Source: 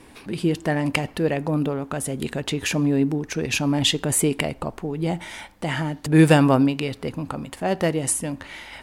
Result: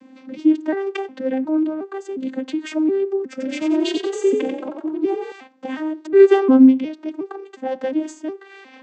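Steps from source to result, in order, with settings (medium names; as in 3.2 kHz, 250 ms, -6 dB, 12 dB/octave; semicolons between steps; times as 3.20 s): vocoder on a broken chord minor triad, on C4, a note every 360 ms; peaking EQ 250 Hz +2 dB; 3.31–5.32 s: frequency-shifting echo 90 ms, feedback 41%, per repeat +33 Hz, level -5.5 dB; trim +3 dB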